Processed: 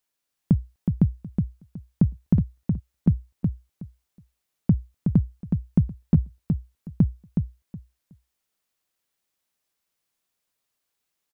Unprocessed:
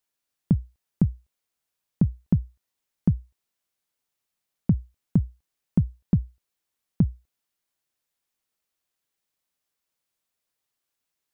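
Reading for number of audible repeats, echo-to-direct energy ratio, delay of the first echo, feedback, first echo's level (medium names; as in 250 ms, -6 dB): 3, -5.0 dB, 369 ms, 19%, -5.0 dB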